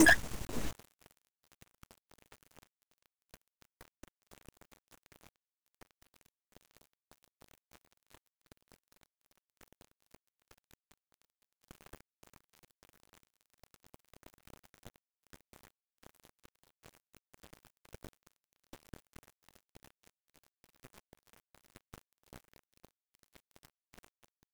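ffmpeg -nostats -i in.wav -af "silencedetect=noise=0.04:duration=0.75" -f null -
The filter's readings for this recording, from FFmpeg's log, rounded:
silence_start: 0.69
silence_end: 24.53 | silence_duration: 23.84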